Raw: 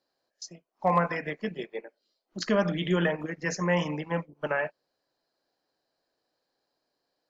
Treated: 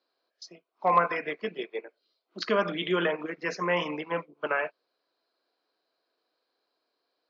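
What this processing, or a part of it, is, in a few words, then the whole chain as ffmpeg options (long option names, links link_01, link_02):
phone earpiece: -af "highpass=450,equalizer=frequency=570:width_type=q:width=4:gain=-7,equalizer=frequency=830:width_type=q:width=4:gain=-9,equalizer=frequency=1800:width_type=q:width=4:gain=-9,equalizer=frequency=3000:width_type=q:width=4:gain=-4,lowpass=frequency=4000:width=0.5412,lowpass=frequency=4000:width=1.3066,volume=7dB"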